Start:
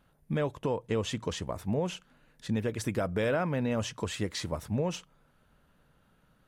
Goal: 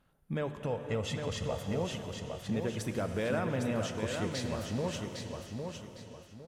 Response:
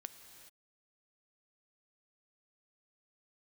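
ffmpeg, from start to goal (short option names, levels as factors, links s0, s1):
-filter_complex "[0:a]asettb=1/sr,asplit=3[s0][s1][s2];[s0]atrim=end=0.614[s3];[s1]atrim=start=0.61:end=1.69,asetpts=PTS-STARTPTS,afade=t=in:d=0.004:c=qsin,afade=t=out:st=1.076:d=0.004:c=qsin,aecho=1:1:1.5:0.6,atrim=end_sample=47628[s4];[s2]atrim=start=1.686[s5];[s3][s4]acrossfade=d=0.004:c1=hsin:c2=qsin[s6];[s6][s5]acrossfade=d=0.004:c1=qsin:c2=hsin,aecho=1:1:807|1614|2421|3228:0.531|0.159|0.0478|0.0143[s7];[1:a]atrim=start_sample=2205,asetrate=33516,aresample=44100[s8];[s7][s8]afir=irnorm=-1:irlink=0"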